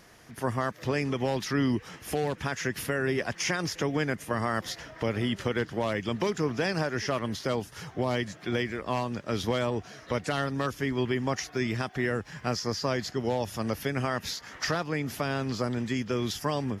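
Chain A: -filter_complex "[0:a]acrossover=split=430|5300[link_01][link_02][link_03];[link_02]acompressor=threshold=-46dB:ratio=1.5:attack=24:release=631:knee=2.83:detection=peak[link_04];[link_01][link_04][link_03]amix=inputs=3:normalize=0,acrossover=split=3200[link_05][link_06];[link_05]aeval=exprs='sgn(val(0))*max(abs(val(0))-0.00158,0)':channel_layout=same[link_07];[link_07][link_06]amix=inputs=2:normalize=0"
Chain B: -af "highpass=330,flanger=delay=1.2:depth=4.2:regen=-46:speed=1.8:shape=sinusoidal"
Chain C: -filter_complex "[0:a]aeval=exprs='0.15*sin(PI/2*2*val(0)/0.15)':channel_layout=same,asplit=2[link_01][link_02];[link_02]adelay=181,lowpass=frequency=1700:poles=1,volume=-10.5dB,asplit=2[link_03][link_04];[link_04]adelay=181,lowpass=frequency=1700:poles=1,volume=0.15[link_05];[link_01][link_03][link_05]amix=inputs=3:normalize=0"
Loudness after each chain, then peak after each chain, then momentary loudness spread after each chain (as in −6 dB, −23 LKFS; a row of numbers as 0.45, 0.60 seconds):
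−33.0, −36.5, −23.5 LKFS; −17.5, −20.0, −14.0 dBFS; 4, 4, 4 LU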